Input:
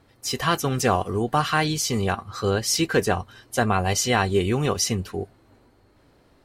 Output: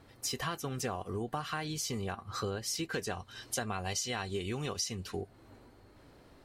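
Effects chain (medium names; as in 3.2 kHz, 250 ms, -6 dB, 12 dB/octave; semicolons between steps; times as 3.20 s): 2.93–5.21 s: peaking EQ 5 kHz +7.5 dB 2.2 oct; compression 6:1, threshold -34 dBFS, peak gain reduction 19.5 dB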